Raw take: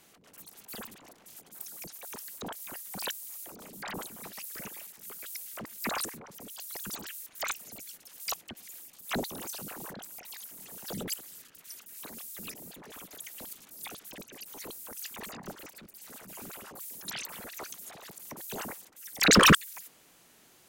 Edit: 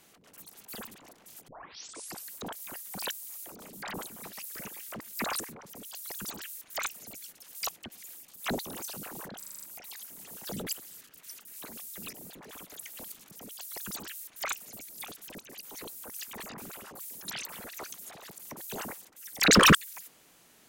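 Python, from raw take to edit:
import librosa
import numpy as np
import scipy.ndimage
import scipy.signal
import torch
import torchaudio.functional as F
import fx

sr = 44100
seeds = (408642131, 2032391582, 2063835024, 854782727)

y = fx.edit(x, sr, fx.tape_start(start_s=1.48, length_s=0.81),
    fx.cut(start_s=4.81, length_s=0.65),
    fx.duplicate(start_s=6.3, length_s=1.58, to_s=13.72),
    fx.stutter(start_s=10.03, slice_s=0.04, count=7),
    fx.cut(start_s=15.41, length_s=0.97), tone=tone)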